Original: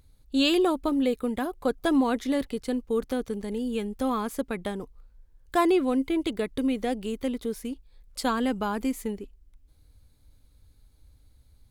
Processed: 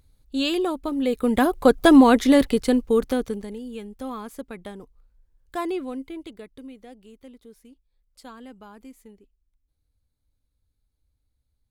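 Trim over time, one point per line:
0.95 s -1.5 dB
1.40 s +10.5 dB
2.53 s +10.5 dB
3.28 s +4 dB
3.61 s -6 dB
5.79 s -6 dB
6.80 s -16.5 dB

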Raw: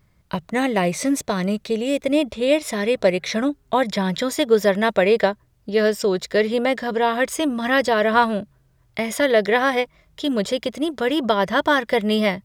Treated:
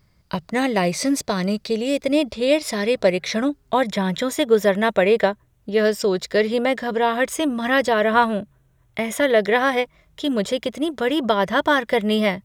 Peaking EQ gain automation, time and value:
peaking EQ 4.8 kHz 0.27 oct
+10 dB
from 2.98 s +2.5 dB
from 3.87 s -8 dB
from 5.85 s +2 dB
from 6.62 s -4 dB
from 7.92 s -11 dB
from 9.40 s -4 dB

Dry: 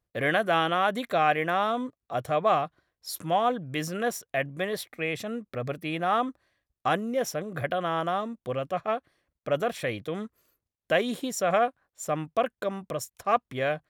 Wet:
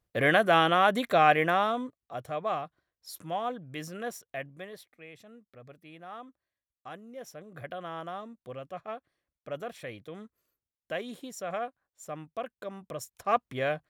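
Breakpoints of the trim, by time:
1.44 s +2 dB
2.17 s -8 dB
4.30 s -8 dB
5.02 s -18.5 dB
6.90 s -18.5 dB
7.72 s -10.5 dB
12.54 s -10.5 dB
13.33 s -2 dB

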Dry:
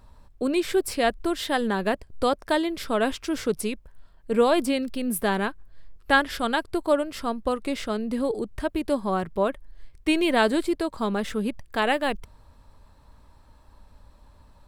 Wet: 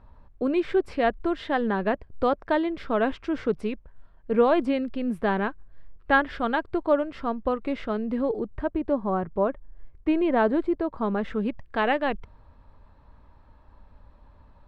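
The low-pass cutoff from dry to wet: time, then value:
8.19 s 2.1 kHz
8.82 s 1.3 kHz
10.82 s 1.3 kHz
11.48 s 2.4 kHz

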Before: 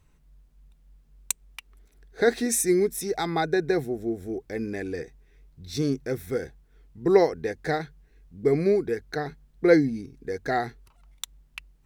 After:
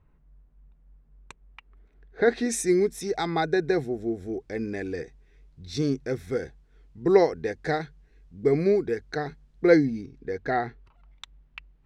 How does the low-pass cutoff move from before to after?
1.45 s 1.6 kHz
2.24 s 2.7 kHz
2.56 s 7 kHz
9.72 s 7 kHz
10.67 s 2.8 kHz

